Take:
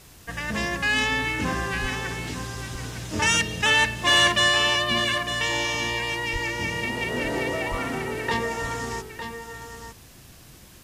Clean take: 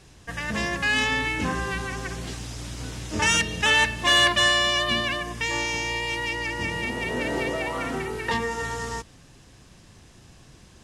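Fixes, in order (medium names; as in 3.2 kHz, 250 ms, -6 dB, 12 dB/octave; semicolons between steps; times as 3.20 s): 1.81–1.93 s: high-pass 140 Hz 24 dB/octave; 6.32–6.44 s: high-pass 140 Hz 24 dB/octave; 7.70–7.82 s: high-pass 140 Hz 24 dB/octave; expander -39 dBFS, range -21 dB; inverse comb 906 ms -9 dB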